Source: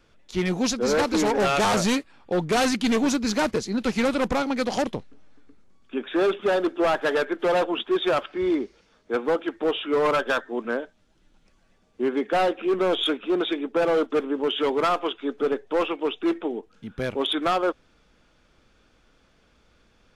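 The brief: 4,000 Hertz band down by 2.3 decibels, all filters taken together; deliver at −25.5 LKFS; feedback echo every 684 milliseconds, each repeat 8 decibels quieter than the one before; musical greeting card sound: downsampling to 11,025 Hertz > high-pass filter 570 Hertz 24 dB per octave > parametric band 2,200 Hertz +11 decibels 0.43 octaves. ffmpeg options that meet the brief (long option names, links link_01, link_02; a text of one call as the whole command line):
ffmpeg -i in.wav -af "equalizer=frequency=4000:width_type=o:gain=-5,aecho=1:1:684|1368|2052|2736|3420:0.398|0.159|0.0637|0.0255|0.0102,aresample=11025,aresample=44100,highpass=frequency=570:width=0.5412,highpass=frequency=570:width=1.3066,equalizer=frequency=2200:width_type=o:width=0.43:gain=11,volume=1.5dB" out.wav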